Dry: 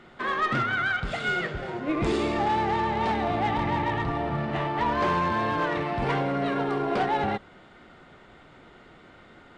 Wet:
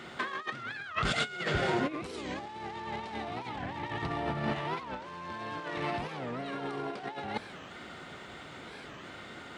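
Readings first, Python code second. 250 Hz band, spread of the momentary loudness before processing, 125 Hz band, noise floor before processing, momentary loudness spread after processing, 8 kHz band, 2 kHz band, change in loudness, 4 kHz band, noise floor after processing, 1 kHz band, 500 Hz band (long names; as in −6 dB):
−9.0 dB, 4 LU, −8.5 dB, −52 dBFS, 15 LU, can't be measured, −7.5 dB, −9.5 dB, −2.5 dB, −47 dBFS, −10.5 dB, −8.5 dB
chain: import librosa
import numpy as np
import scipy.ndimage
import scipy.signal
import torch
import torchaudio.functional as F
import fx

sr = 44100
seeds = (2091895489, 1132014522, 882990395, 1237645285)

y = scipy.signal.sosfilt(scipy.signal.butter(2, 70.0, 'highpass', fs=sr, output='sos'), x)
y = fx.high_shelf(y, sr, hz=2900.0, db=10.5)
y = fx.over_compress(y, sr, threshold_db=-31.0, ratio=-0.5)
y = fx.record_warp(y, sr, rpm=45.0, depth_cents=250.0)
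y = y * librosa.db_to_amplitude(-3.0)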